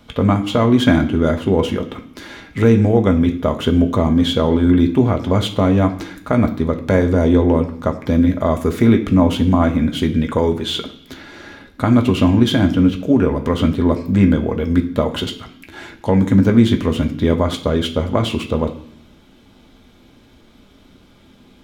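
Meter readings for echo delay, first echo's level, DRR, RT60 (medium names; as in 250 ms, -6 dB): no echo, no echo, 3.5 dB, 0.65 s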